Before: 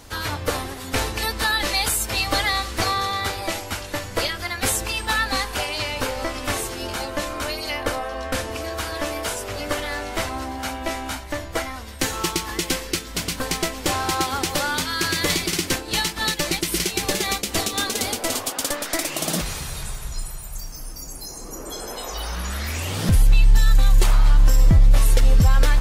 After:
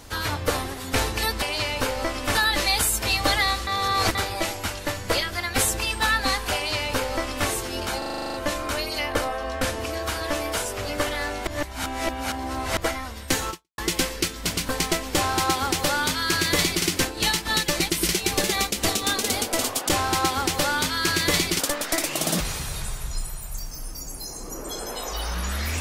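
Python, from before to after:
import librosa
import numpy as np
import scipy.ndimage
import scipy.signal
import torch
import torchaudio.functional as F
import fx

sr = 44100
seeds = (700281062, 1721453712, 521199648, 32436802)

y = fx.edit(x, sr, fx.reverse_span(start_s=2.74, length_s=0.48),
    fx.duplicate(start_s=5.62, length_s=0.93, to_s=1.42),
    fx.stutter(start_s=7.05, slice_s=0.04, count=10),
    fx.reverse_span(start_s=10.18, length_s=1.3),
    fx.fade_out_span(start_s=12.21, length_s=0.28, curve='exp'),
    fx.duplicate(start_s=13.85, length_s=1.7, to_s=18.6), tone=tone)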